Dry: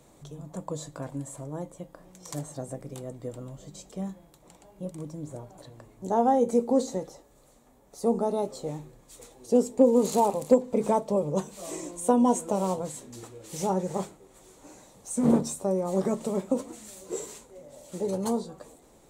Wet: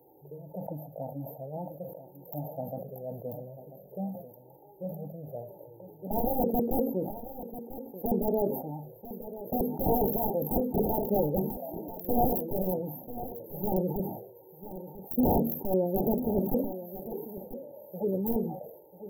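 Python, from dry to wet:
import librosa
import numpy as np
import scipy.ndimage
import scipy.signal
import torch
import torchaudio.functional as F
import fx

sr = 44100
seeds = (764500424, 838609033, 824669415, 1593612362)

p1 = scipy.signal.sosfilt(scipy.signal.butter(2, 180.0, 'highpass', fs=sr, output='sos'), x)
p2 = fx.high_shelf(p1, sr, hz=5500.0, db=10.0)
p3 = (np.mod(10.0 ** (19.0 / 20.0) * p2 + 1.0, 2.0) - 1.0) / 10.0 ** (19.0 / 20.0)
p4 = fx.env_flanger(p3, sr, rest_ms=2.5, full_db=-22.0)
p5 = fx.brickwall_bandstop(p4, sr, low_hz=930.0, high_hz=12000.0)
p6 = p5 + fx.echo_single(p5, sr, ms=992, db=-13.5, dry=0)
p7 = fx.sustainer(p6, sr, db_per_s=71.0)
y = F.gain(torch.from_numpy(p7), 3.5).numpy()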